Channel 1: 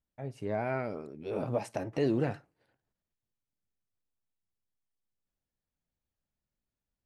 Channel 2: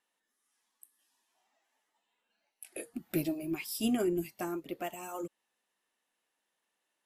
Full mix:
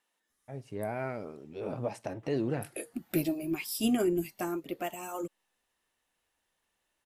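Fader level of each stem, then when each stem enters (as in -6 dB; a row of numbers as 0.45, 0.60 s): -2.5, +2.5 dB; 0.30, 0.00 s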